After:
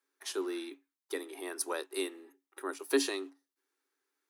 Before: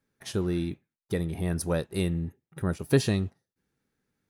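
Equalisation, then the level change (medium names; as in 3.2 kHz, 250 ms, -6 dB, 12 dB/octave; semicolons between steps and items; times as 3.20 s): rippled Chebyshev high-pass 270 Hz, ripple 9 dB; treble shelf 2 kHz +11.5 dB; -1.5 dB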